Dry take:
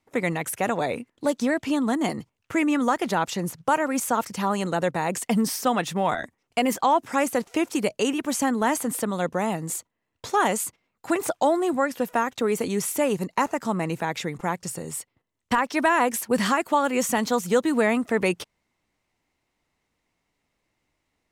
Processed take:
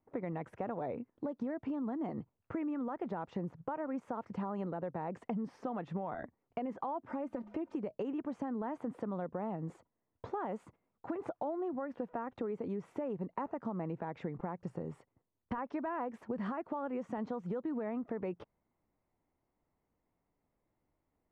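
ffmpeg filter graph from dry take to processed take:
ffmpeg -i in.wav -filter_complex "[0:a]asettb=1/sr,asplit=3[link_01][link_02][link_03];[link_01]atrim=end=7.084[link_04];[link_02]atrim=start=7.08:end=7.74,asetpts=PTS-STARTPTS,afade=type=in:duration=0.004:curve=qsin,afade=type=out:start_time=0.656:duration=0.004:curve=qsin,aecho=1:1:3.3:0.87,atrim=end_sample=29106,bandreject=frequency=104.4:width_type=h:width=4,bandreject=frequency=208.8:width_type=h:width=4,acompressor=threshold=-32dB:ratio=2.5:attack=3.2:release=140:knee=1:detection=peak[link_05];[link_03]atrim=start=7.736[link_06];[link_04][link_05]acrossfade=duration=0.004:curve1=hsin:curve2=qsin[link_07];[link_07][link_06]acrossfade=duration=0.004:curve1=qsin:curve2=hsin,lowpass=1000,alimiter=limit=-20dB:level=0:latency=1:release=146,acompressor=threshold=-31dB:ratio=6,volume=-3.5dB" out.wav

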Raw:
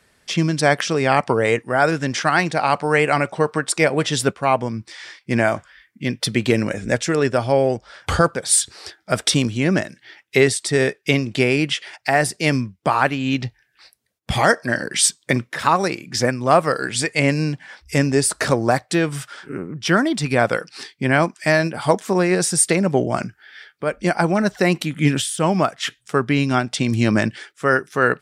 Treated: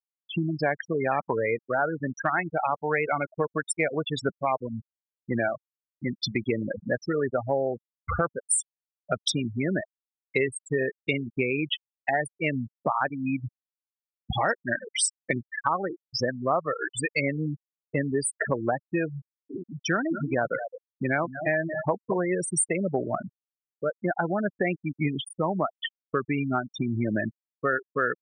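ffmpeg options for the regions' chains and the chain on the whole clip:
ffmpeg -i in.wav -filter_complex "[0:a]asettb=1/sr,asplit=3[link_01][link_02][link_03];[link_01]atrim=end=19.504[link_04];[link_02]atrim=start=19.5:end=22.27,asetpts=PTS-STARTPTS,afade=type=in:duration=0.004:curve=qsin,afade=type=out:start_time=2.766:duration=0.004:curve=qsin,aecho=1:1:217:0.299,atrim=end_sample=122157,acrusher=bits=8:mix=0:aa=0.5[link_05];[link_03]atrim=start=22.266[link_06];[link_04][link_05]acrossfade=duration=0.004:curve1=hsin:curve2=qsin[link_07];[link_07][link_06]acrossfade=duration=0.004:curve1=qsin:curve2=hsin,afftfilt=real='re*gte(hypot(re,im),0.251)':imag='im*gte(hypot(re,im),0.251)':win_size=1024:overlap=0.75,lowshelf=frequency=310:gain=-7,acompressor=threshold=-25dB:ratio=2.5" out.wav

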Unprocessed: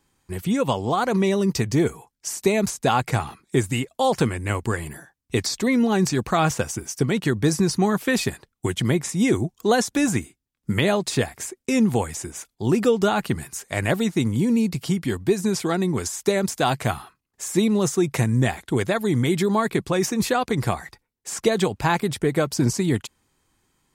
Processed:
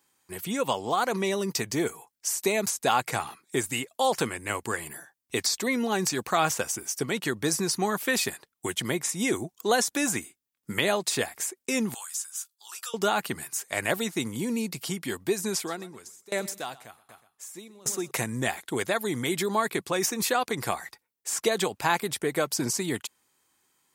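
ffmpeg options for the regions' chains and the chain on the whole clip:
ffmpeg -i in.wav -filter_complex "[0:a]asettb=1/sr,asplit=3[link_01][link_02][link_03];[link_01]atrim=end=11.944[link_04];[link_02]atrim=start=11.94:end=12.94,asetpts=PTS-STARTPTS,afade=type=in:duration=0.004:curve=qsin,afade=type=out:start_time=0.996:duration=0.004:curve=qsin,highpass=frequency=1300:width=0.5412,highpass=frequency=1300:width=1.3066,equalizer=frequency=2100:width=2:gain=-15,asplit=2[link_05][link_06];[link_06]adelay=15,volume=-11dB[link_07];[link_05][link_07]amix=inputs=2:normalize=0,atrim=end_sample=44100[link_08];[link_03]atrim=start=12.936[link_09];[link_04][link_08]acrossfade=duration=0.004:curve1=hsin:curve2=qsin[link_10];[link_10][link_09]acrossfade=duration=0.004:curve1=qsin:curve2=hsin,asettb=1/sr,asplit=3[link_11][link_12][link_13];[link_11]atrim=end=15.554[link_14];[link_12]atrim=start=15.55:end=18.11,asetpts=PTS-STARTPTS,afade=type=in:duration=0.004:curve=qsin,afade=type=out:start_time=2.556:duration=0.004:curve=qsin,aecho=1:1:122|244|366:0.178|0.0676|0.0257,atrim=end_sample=112896,aeval=exprs='val(0)*pow(10,-26*if(lt(mod(1.3*n/s,1),2*abs(1.3)/1000),1-mod(1.3*n/s,1)/(2*abs(1.3)/1000),(mod(1.3*n/s,1)-2*abs(1.3)/1000)/(1-2*abs(1.3)/1000))/20)':channel_layout=same[link_15];[link_13]atrim=start=18.106[link_16];[link_14][link_15]acrossfade=duration=0.004:curve1=hsin:curve2=qsin[link_17];[link_17][link_16]acrossfade=duration=0.004:curve1=qsin:curve2=hsin,highpass=frequency=550:poles=1,highshelf=frequency=11000:gain=10,volume=-1.5dB" out.wav

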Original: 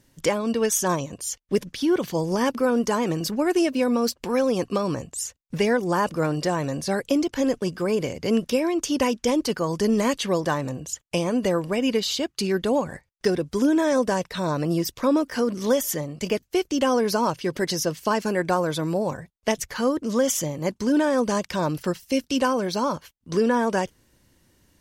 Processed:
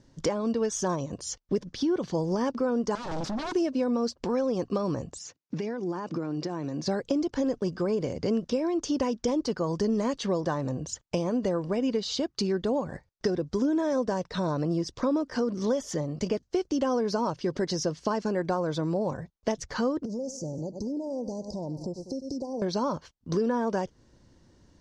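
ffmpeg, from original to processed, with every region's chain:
ffmpeg -i in.wav -filter_complex "[0:a]asettb=1/sr,asplit=3[link_01][link_02][link_03];[link_01]atrim=end=2.954[link_04];[link_02]atrim=start=2.95:end=3.55,asetpts=PTS-STARTPTS,afade=type=in:duration=0.004:curve=qsin,afade=type=out:start_time=0.596:duration=0.004:curve=qsin,asuperstop=centerf=1800:order=12:qfactor=4,aeval=exprs='0.0376*(abs(mod(val(0)/0.0376+3,4)-2)-1)':channel_layout=same[link_05];[link_03]atrim=start=3.546[link_06];[link_04][link_05]acrossfade=duration=0.004:curve1=hsin:curve2=qsin[link_07];[link_07][link_06]acrossfade=duration=0.004:curve1=qsin:curve2=hsin,asettb=1/sr,asplit=3[link_08][link_09][link_10];[link_08]atrim=end=5.184[link_11];[link_09]atrim=start=5.18:end=6.86,asetpts=PTS-STARTPTS,afade=type=in:duration=0.004:curve=qsin,afade=type=out:start_time=1.676:duration=0.004:curve=qsin,acompressor=threshold=-31dB:ratio=10:attack=3.2:release=140:knee=1:detection=peak,highpass=frequency=120:width=0.5412,highpass=frequency=120:width=1.3066,equalizer=frequency=320:width_type=q:width=4:gain=7,equalizer=frequency=560:width_type=q:width=4:gain=-4,equalizer=frequency=2400:width_type=q:width=4:gain=5,lowpass=frequency=7600:width=0.5412,lowpass=frequency=7600:width=1.3066[link_12];[link_10]atrim=start=6.856[link_13];[link_11][link_12]acrossfade=duration=0.004:curve1=hsin:curve2=qsin[link_14];[link_14][link_13]acrossfade=duration=0.004:curve1=qsin:curve2=hsin,asettb=1/sr,asplit=3[link_15][link_16][link_17];[link_15]atrim=end=20.054[link_18];[link_16]atrim=start=20.05:end=22.62,asetpts=PTS-STARTPTS,afade=type=in:duration=0.004:curve=qsin,afade=type=out:start_time=2.566:duration=0.004:curve=qsin,aecho=1:1:98|196|294:0.141|0.0551|0.0215,atrim=end_sample=113337,acompressor=threshold=-33dB:ratio=6:attack=3.2:release=140:knee=1:detection=peak,asuperstop=centerf=2000:order=12:qfactor=0.53[link_19];[link_17]atrim=start=22.616[link_20];[link_18][link_19]acrossfade=duration=0.004:curve1=hsin:curve2=qsin[link_21];[link_21][link_20]acrossfade=duration=0.004:curve1=qsin:curve2=hsin,lowpass=frequency=5900:width=0.5412,lowpass=frequency=5900:width=1.3066,equalizer=frequency=2500:width_type=o:width=1.4:gain=-10.5,acompressor=threshold=-31dB:ratio=2.5,volume=3.5dB" out.wav

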